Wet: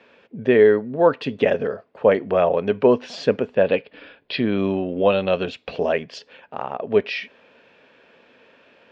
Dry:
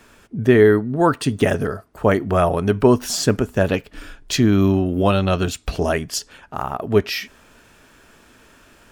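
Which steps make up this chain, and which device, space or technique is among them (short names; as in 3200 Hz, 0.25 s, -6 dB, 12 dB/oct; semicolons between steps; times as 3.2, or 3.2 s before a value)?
3.55–4.57 steep low-pass 5200 Hz 96 dB/oct; kitchen radio (speaker cabinet 210–3900 Hz, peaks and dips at 320 Hz -5 dB, 510 Hz +10 dB, 1300 Hz -6 dB, 2500 Hz +4 dB); gain -2.5 dB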